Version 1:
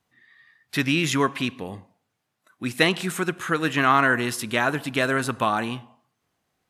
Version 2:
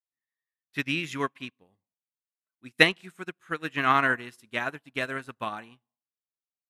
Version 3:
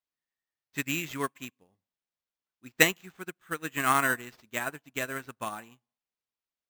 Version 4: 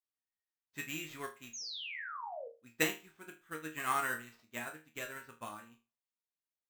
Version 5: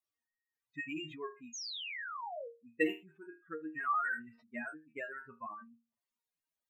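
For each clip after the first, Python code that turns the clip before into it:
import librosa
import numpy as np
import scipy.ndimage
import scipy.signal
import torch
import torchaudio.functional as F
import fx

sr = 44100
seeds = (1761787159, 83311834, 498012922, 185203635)

y1 = fx.dynamic_eq(x, sr, hz=2300.0, q=1.3, threshold_db=-35.0, ratio=4.0, max_db=5)
y1 = fx.upward_expand(y1, sr, threshold_db=-39.0, expansion=2.5)
y2 = fx.sample_hold(y1, sr, seeds[0], rate_hz=9900.0, jitter_pct=0)
y2 = y2 * 10.0 ** (-2.5 / 20.0)
y3 = fx.spec_paint(y2, sr, seeds[1], shape='fall', start_s=1.53, length_s=0.95, low_hz=460.0, high_hz=6800.0, level_db=-34.0)
y3 = fx.resonator_bank(y3, sr, root=39, chord='sus4', decay_s=0.29)
y3 = y3 * 10.0 ** (2.0 / 20.0)
y4 = fx.spec_expand(y3, sr, power=3.2)
y4 = y4 * 10.0 ** (1.5 / 20.0)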